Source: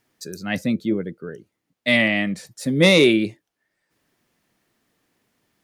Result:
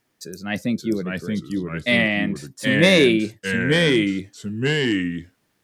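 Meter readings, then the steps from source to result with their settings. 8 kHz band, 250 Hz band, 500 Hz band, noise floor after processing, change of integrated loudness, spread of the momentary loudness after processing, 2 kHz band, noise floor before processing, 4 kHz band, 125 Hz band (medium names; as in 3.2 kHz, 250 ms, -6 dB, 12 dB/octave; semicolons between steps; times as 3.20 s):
+1.0 dB, +2.0 dB, +1.0 dB, -70 dBFS, -1.0 dB, 14 LU, +2.0 dB, -80 dBFS, +1.5 dB, +3.5 dB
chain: ever faster or slower copies 545 ms, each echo -2 st, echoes 2; trim -1 dB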